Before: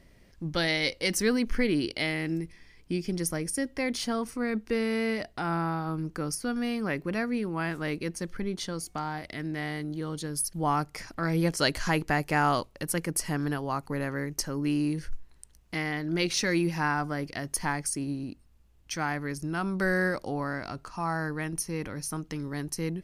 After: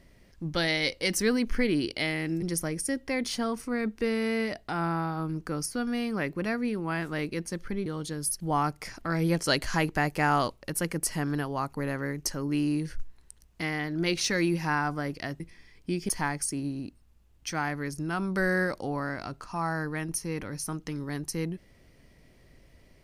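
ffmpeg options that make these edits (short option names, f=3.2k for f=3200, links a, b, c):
-filter_complex "[0:a]asplit=5[a][b][c][d][e];[a]atrim=end=2.422[f];[b]atrim=start=3.108:end=8.552[g];[c]atrim=start=9.988:end=17.532[h];[d]atrim=start=2.418:end=3.112[i];[e]atrim=start=17.528[j];[f][g]acrossfade=d=0.004:c1=hsin:c2=hsin[k];[k][h]acrossfade=d=0.004:c1=hsin:c2=hsin[l];[l][i]acrossfade=d=0.004:c1=hsin:c2=hsin[m];[m][j]acrossfade=d=0.004:c1=hsin:c2=hsin"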